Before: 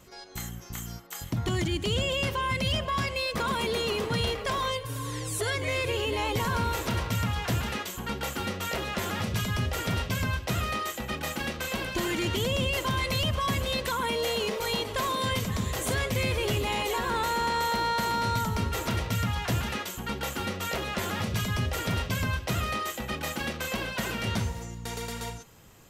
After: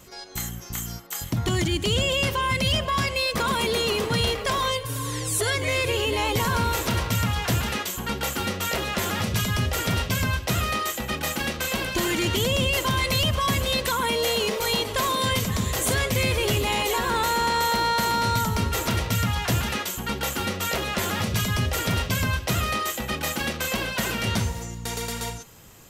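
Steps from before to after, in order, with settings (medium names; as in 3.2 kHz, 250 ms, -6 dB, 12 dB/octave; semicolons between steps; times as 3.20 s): treble shelf 4.3 kHz +5 dB; trim +4 dB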